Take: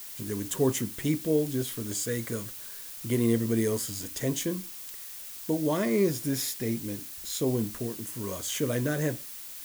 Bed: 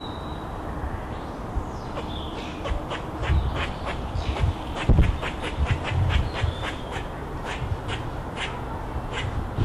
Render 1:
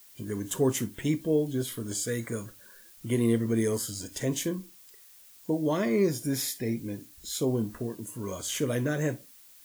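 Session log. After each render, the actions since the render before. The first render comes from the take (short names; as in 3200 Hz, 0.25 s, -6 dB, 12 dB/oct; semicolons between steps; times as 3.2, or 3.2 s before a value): noise print and reduce 12 dB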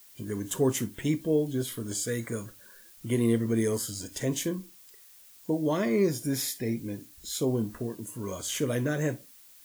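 nothing audible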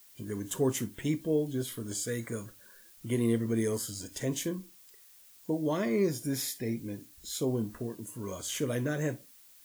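gain -3 dB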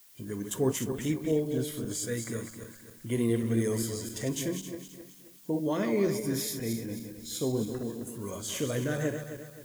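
regenerating reverse delay 0.132 s, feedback 61%, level -7 dB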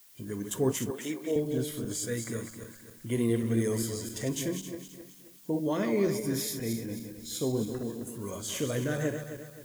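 0.9–1.36 HPF 350 Hz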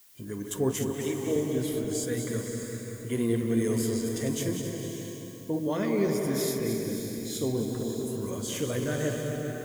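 on a send: darkening echo 0.189 s, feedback 73%, low-pass 1600 Hz, level -7.5 dB; on the sum: bloom reverb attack 0.61 s, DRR 6 dB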